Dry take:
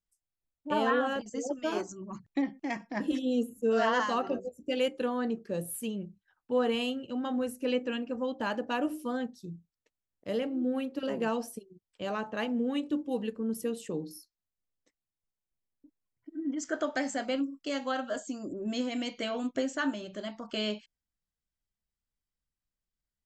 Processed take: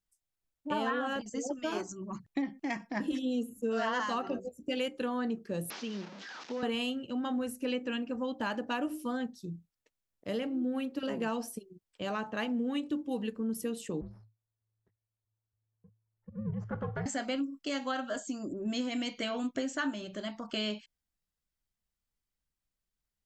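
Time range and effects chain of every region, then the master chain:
0:05.70–0:06.63: linear delta modulator 32 kbit/s, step −40.5 dBFS + high-pass filter 210 Hz 24 dB per octave + downward compressor 3 to 1, threshold −34 dBFS
0:14.01–0:17.06: gain on one half-wave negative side −12 dB + low-pass filter 1,200 Hz + frequency shifter −110 Hz
whole clip: dynamic equaliser 510 Hz, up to −4 dB, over −44 dBFS, Q 1.3; downward compressor 3 to 1, threshold −31 dBFS; level +1.5 dB

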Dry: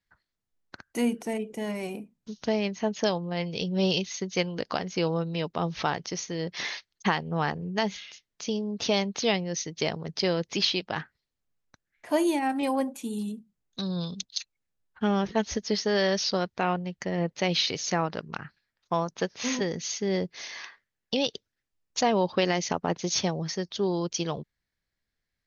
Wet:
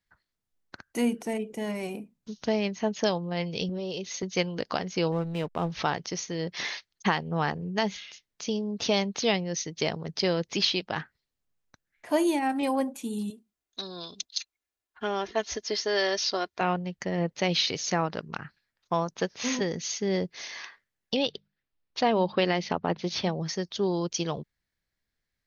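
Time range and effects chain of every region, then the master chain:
0:03.69–0:04.23: high-pass filter 60 Hz + parametric band 460 Hz +8.5 dB 1.1 octaves + downward compressor 16 to 1, threshold −29 dBFS
0:05.12–0:05.72: high-frequency loss of the air 170 metres + slack as between gear wheels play −39.5 dBFS
0:13.30–0:16.61: high-pass filter 96 Hz 6 dB per octave + parametric band 150 Hz −13 dB 1.6 octaves + comb filter 2.9 ms, depth 40%
0:21.16–0:23.41: inverse Chebyshev low-pass filter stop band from 8,500 Hz + mains-hum notches 50/100/150/200 Hz
whole clip: no processing

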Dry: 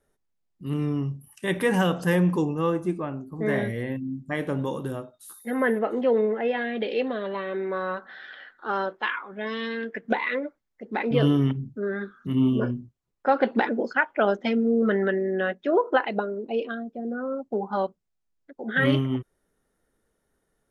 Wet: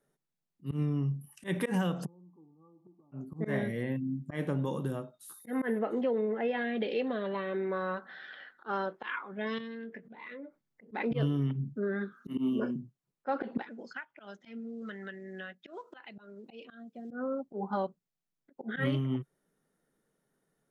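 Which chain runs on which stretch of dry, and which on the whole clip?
0:02.05–0:03.12: converter with a step at zero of −31.5 dBFS + Chebyshev low-pass with heavy ripple 1,200 Hz, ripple 9 dB + gate with flip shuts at −25 dBFS, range −31 dB
0:09.58–0:10.92: low-shelf EQ 450 Hz +7 dB + downward compressor 10 to 1, threshold −38 dBFS + double-tracking delay 22 ms −10 dB
0:12.12–0:12.76: high-pass filter 190 Hz 24 dB per octave + high-shelf EQ 5,400 Hz +7.5 dB + notch filter 3,400 Hz, Q 14
0:13.62–0:17.11: guitar amp tone stack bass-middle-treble 5-5-5 + multiband upward and downward compressor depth 100%
whole clip: low shelf with overshoot 110 Hz −9 dB, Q 3; volume swells 111 ms; downward compressor 6 to 1, threshold −22 dBFS; level −4.5 dB

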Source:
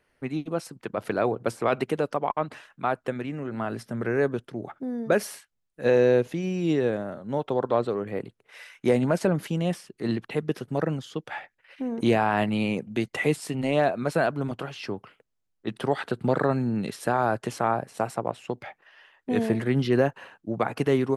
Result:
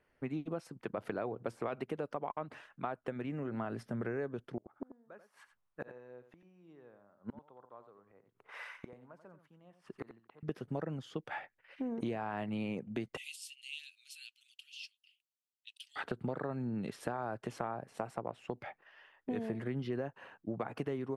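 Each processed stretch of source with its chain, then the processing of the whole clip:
0:04.57–0:10.43: gate with flip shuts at −27 dBFS, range −32 dB + parametric band 1,100 Hz +12 dB 1.3 octaves + single-tap delay 88 ms −11 dB
0:13.17–0:15.96: Chebyshev high-pass filter 2,700 Hz, order 5 + high-shelf EQ 3,900 Hz +5 dB
whole clip: high-shelf EQ 3,800 Hz −10 dB; notch filter 4,000 Hz, Q 30; downward compressor, threshold −30 dBFS; level −4 dB

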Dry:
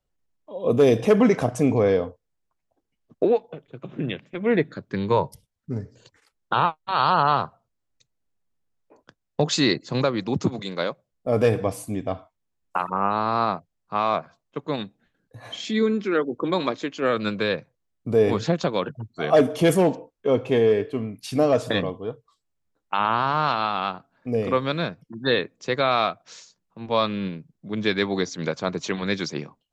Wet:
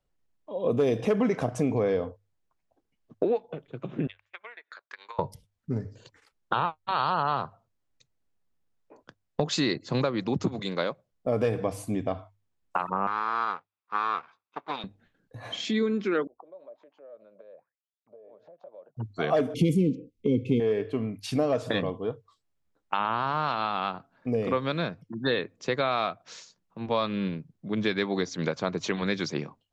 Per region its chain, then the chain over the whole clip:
0:04.07–0:05.19: four-pole ladder high-pass 820 Hz, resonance 25% + downward compressor 8 to 1, threshold −45 dBFS + transient designer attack +8 dB, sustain −10 dB
0:13.07–0:14.84: lower of the sound and its delayed copy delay 0.81 ms + band-pass filter 570–3,500 Hz
0:16.27–0:18.97: downward compressor 20 to 1, threshold −32 dBFS + envelope filter 590–4,200 Hz, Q 11, down, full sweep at −34 dBFS
0:19.54–0:20.60: linear-phase brick-wall band-stop 530–2,000 Hz + low shelf with overshoot 350 Hz +8.5 dB, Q 1.5
whole clip: high-shelf EQ 7,700 Hz −8.5 dB; mains-hum notches 50/100 Hz; downward compressor 2.5 to 1, threshold −26 dBFS; level +1 dB

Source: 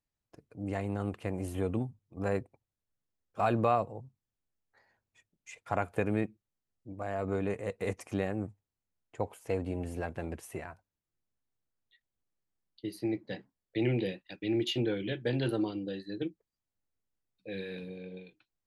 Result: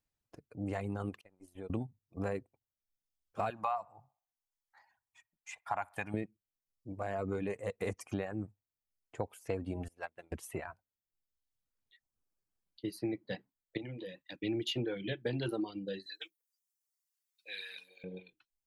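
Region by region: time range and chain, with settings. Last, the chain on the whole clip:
0:01.21–0:01.70: low-shelf EQ 120 Hz −7.5 dB + downward compressor 4 to 1, threshold −39 dBFS + noise gate −42 dBFS, range −28 dB
0:03.50–0:06.14: low shelf with overshoot 610 Hz −10 dB, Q 3 + delay with a band-pass on its return 64 ms, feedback 39%, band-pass 1,000 Hz, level −17.5 dB
0:09.88–0:10.32: low-shelf EQ 480 Hz −10.5 dB + mains-hum notches 50/100/150/200/250/300 Hz + expander for the loud parts 2.5 to 1, over −50 dBFS
0:13.77–0:14.41: EQ curve with evenly spaced ripples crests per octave 1.1, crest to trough 6 dB + downward compressor 4 to 1, threshold −41 dBFS + high-pass filter 47 Hz
0:16.06–0:18.04: high-pass filter 1,300 Hz + high-shelf EQ 3,400 Hz +11 dB
whole clip: reverb reduction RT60 1 s; downward compressor 4 to 1, threshold −33 dBFS; level +1 dB

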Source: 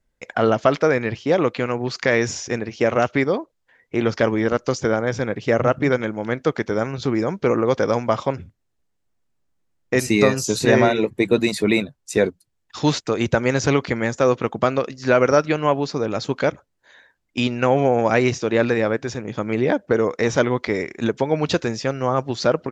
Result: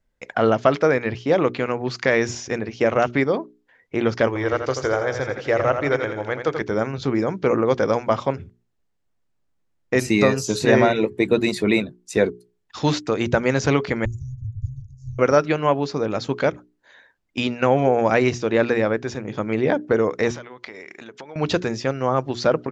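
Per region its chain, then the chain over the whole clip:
0:04.27–0:06.61: parametric band 210 Hz −14 dB 0.76 octaves + repeating echo 84 ms, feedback 47%, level −7.5 dB
0:14.05–0:15.19: Chebyshev band-stop filter 100–6,600 Hz, order 4 + spectral tilt −4.5 dB per octave
0:20.31–0:21.36: downward compressor 12 to 1, threshold −29 dBFS + low-pass filter 2,000 Hz 6 dB per octave + spectral tilt +4 dB per octave
whole clip: high-shelf EQ 6,800 Hz −7.5 dB; mains-hum notches 60/120/180/240/300/360/420 Hz

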